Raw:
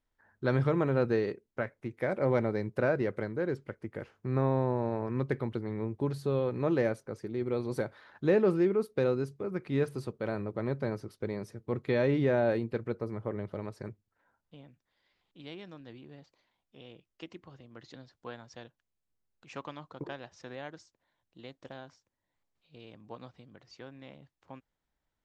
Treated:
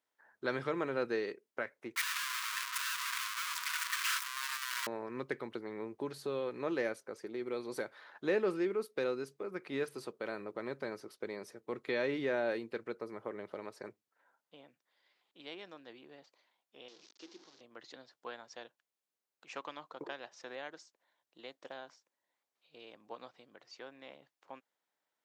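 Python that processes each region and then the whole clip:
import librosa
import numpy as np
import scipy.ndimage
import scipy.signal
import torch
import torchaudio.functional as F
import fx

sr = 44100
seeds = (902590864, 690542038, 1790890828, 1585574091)

y = fx.chain(x, sr, fx.clip_1bit(),
    fx.brickwall_highpass(low_hz=940.0), at=(1.96, 4.87))
y = fx.chain(y, sr, fx.delta_mod(bps=32000, step_db=-46.0),
    fx.highpass(hz=270.0, slope=12),
    fx.band_shelf(hz=1200.0, db=-11.5, octaves=2.9), at=(16.88, 17.61))
y = scipy.signal.sosfilt(scipy.signal.butter(2, 430.0, 'highpass', fs=sr, output='sos'), y)
y = fx.dynamic_eq(y, sr, hz=700.0, q=0.82, threshold_db=-44.0, ratio=4.0, max_db=-7)
y = y * 10.0 ** (1.0 / 20.0)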